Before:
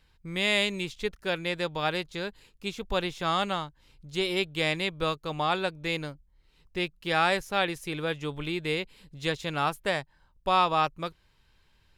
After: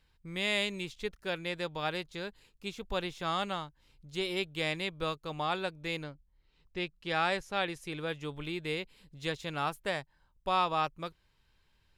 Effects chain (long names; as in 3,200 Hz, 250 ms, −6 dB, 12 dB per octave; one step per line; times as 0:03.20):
0:06.03–0:08.07: low-pass filter 4,500 Hz → 12,000 Hz 12 dB per octave
level −5.5 dB